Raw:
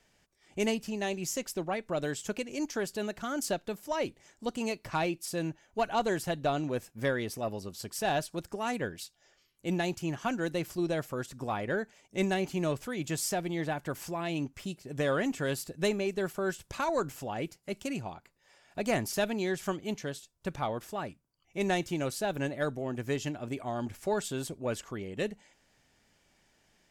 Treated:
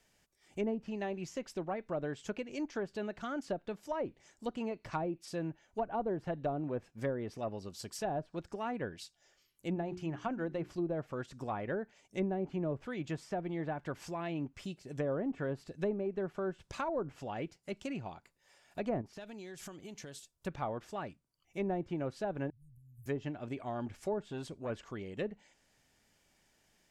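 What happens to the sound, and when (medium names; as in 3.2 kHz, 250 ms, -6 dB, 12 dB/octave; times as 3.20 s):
9.74–10.73 s: hum notches 60/120/180/240/300/360/420 Hz
19.01–20.32 s: compression 10:1, threshold -39 dBFS
22.50–23.06 s: inverse Chebyshev band-stop 480–3000 Hz, stop band 80 dB
24.18–24.70 s: transformer saturation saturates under 480 Hz
whole clip: low-pass that closes with the level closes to 740 Hz, closed at -26 dBFS; treble shelf 9.7 kHz +9 dB; trim -4 dB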